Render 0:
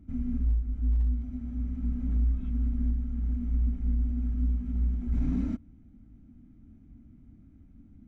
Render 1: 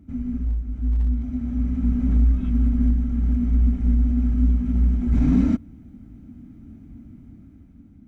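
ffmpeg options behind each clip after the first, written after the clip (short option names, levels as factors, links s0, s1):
-af "highpass=f=74:p=1,dynaudnorm=f=320:g=7:m=2.24,volume=1.88"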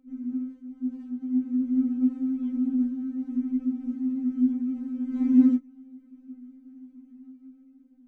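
-af "equalizer=f=360:w=1.5:g=14,flanger=delay=15.5:depth=7.8:speed=1.1,afftfilt=real='re*3.46*eq(mod(b,12),0)':imag='im*3.46*eq(mod(b,12),0)':win_size=2048:overlap=0.75,volume=0.422"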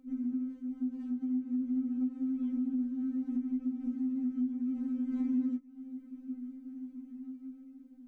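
-af "acompressor=threshold=0.0178:ratio=4,volume=1.41"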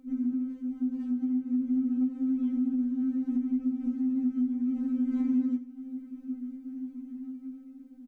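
-af "aecho=1:1:81|162|243|324:0.178|0.0694|0.027|0.0105,volume=1.68"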